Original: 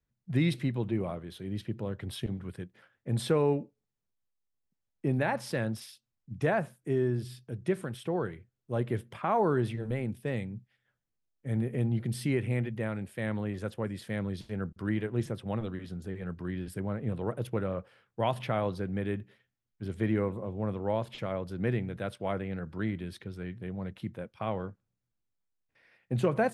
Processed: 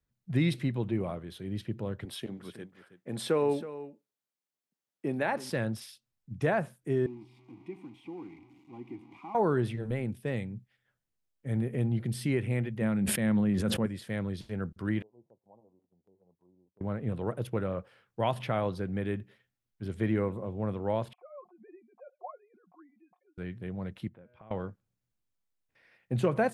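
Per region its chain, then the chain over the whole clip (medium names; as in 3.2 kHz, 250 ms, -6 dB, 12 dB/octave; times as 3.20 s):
2.05–5.50 s: high-pass 230 Hz + delay 321 ms -14 dB
7.06–9.35 s: jump at every zero crossing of -34 dBFS + vowel filter u + comb of notches 440 Hz
12.81–13.86 s: peaking EQ 200 Hz +10.5 dB 0.63 oct + decay stretcher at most 30 dB/s
15.02–16.81 s: steep low-pass 970 Hz 96 dB/octave + gate -42 dBFS, range -8 dB + differentiator
21.13–23.38 s: formants replaced by sine waves + cascade formant filter a + comb 5.6 ms, depth 73%
24.08–24.51 s: de-hum 122.5 Hz, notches 28 + compression 3:1, threshold -53 dBFS + distance through air 450 m
whole clip: none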